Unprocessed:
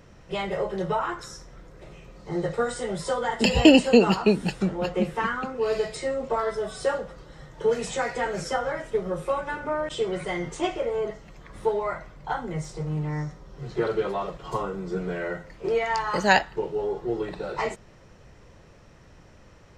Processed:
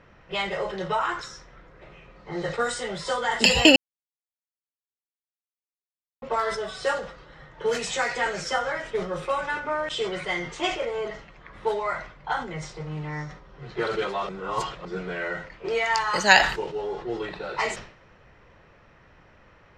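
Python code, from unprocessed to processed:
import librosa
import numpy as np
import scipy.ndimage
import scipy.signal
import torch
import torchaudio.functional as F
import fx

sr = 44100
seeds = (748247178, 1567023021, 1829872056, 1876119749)

y = fx.edit(x, sr, fx.silence(start_s=3.76, length_s=2.46),
    fx.reverse_span(start_s=14.29, length_s=0.56), tone=tone)
y = fx.tilt_shelf(y, sr, db=-6.5, hz=900.0)
y = fx.env_lowpass(y, sr, base_hz=2000.0, full_db=-21.0)
y = fx.sustainer(y, sr, db_per_s=100.0)
y = y * 10.0 ** (1.0 / 20.0)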